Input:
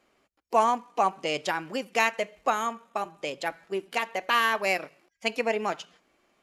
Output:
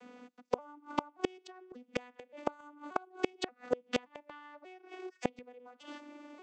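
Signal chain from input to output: arpeggiated vocoder minor triad, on B3, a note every 0.58 s; compressor 5:1, threshold -30 dBFS, peak gain reduction 12 dB; flipped gate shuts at -30 dBFS, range -35 dB; gain +15.5 dB

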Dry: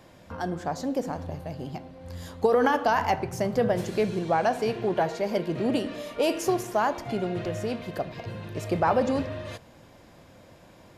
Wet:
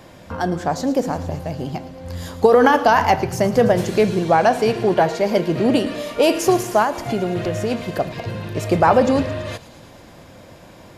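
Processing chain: on a send: thin delay 0.111 s, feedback 75%, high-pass 4000 Hz, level -12 dB; 6.82–7.71 on the sum: compressor 4:1, threshold -26 dBFS, peak gain reduction 5 dB; gain +9 dB

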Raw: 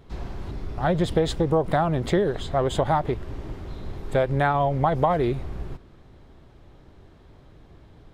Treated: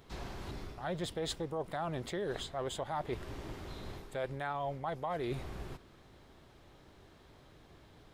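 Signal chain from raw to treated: tilt +2 dB/oct; reverse; compressor 12:1, threshold -30 dBFS, peak gain reduction 14.5 dB; reverse; gain -3.5 dB

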